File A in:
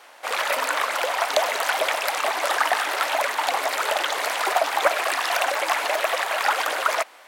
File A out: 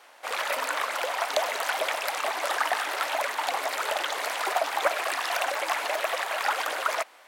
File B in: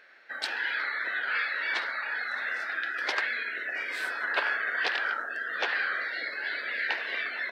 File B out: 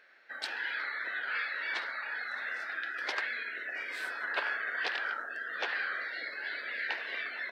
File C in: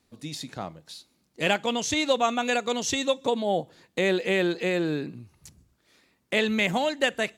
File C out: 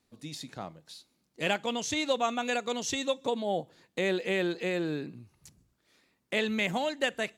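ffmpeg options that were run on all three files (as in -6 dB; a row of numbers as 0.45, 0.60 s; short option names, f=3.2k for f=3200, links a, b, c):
-af "equalizer=f=74:t=o:w=0.32:g=-7,volume=-5dB"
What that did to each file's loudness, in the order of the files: -5.0, -5.0, -5.0 LU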